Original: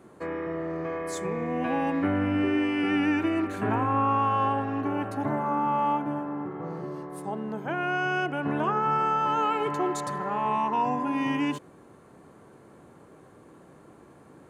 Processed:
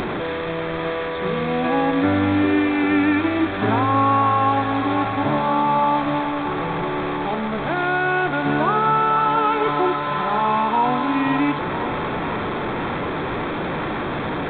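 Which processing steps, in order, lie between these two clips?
linear delta modulator 64 kbit/s, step −26.5 dBFS
notch filter 2,900 Hz, Q 6.5
hum removal 65.87 Hz, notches 8
upward compression, threshold −31 dBFS
delay with a band-pass on its return 502 ms, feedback 78%, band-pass 1,100 Hz, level −10 dB
level +7 dB
A-law companding 64 kbit/s 8,000 Hz

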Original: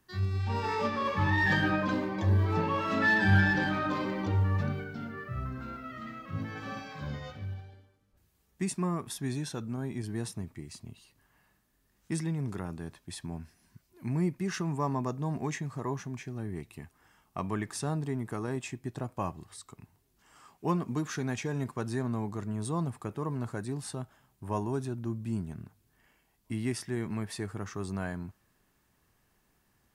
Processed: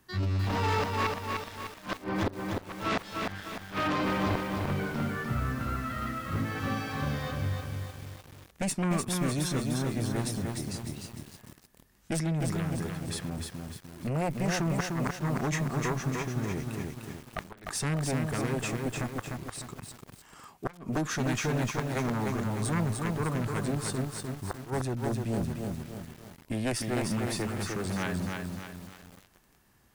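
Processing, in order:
harmonic generator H 4 −36 dB, 7 −11 dB, 8 −26 dB, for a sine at −11 dBFS
gate with flip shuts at −24 dBFS, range −26 dB
feedback echo at a low word length 301 ms, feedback 55%, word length 9 bits, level −3 dB
level +6 dB

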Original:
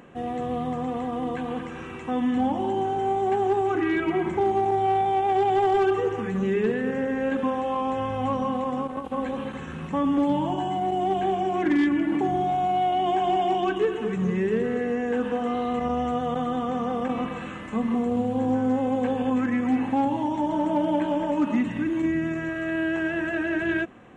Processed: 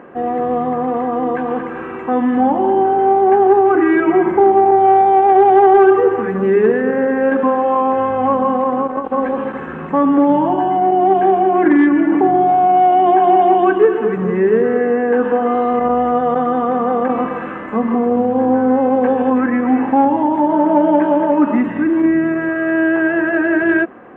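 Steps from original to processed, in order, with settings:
drawn EQ curve 110 Hz 0 dB, 360 Hz +14 dB, 1,600 Hz +13 dB, 5,400 Hz −13 dB
level −1.5 dB

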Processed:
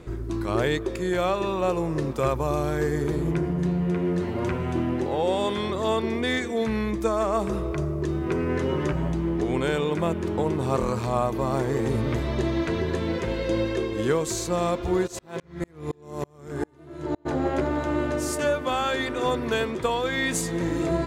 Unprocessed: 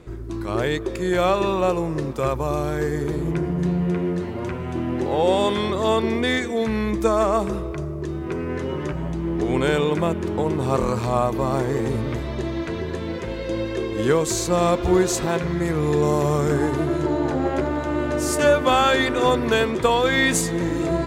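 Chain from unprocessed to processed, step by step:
speech leveller within 5 dB 0.5 s
0:15.06–0:17.25: tremolo with a ramp in dB swelling 5.4 Hz → 1.6 Hz, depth 37 dB
level −3.5 dB

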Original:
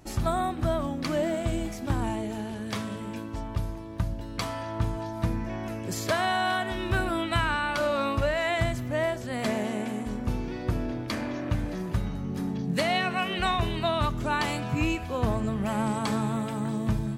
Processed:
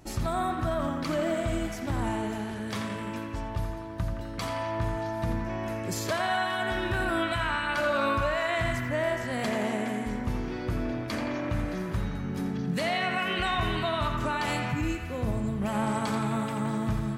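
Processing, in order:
0:14.72–0:15.62: parametric band 1,600 Hz −12 dB 2.5 octaves
brickwall limiter −20 dBFS, peak gain reduction 7.5 dB
feedback echo with a band-pass in the loop 85 ms, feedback 83%, band-pass 1,600 Hz, level −4 dB

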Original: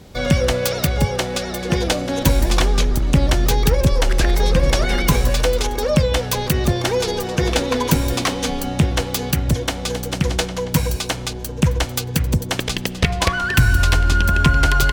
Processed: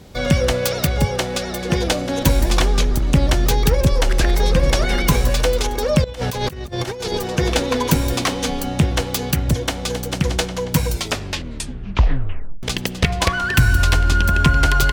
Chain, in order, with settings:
0:06.04–0:07.21: compressor whose output falls as the input rises −24 dBFS, ratio −0.5
0:10.86: tape stop 1.77 s

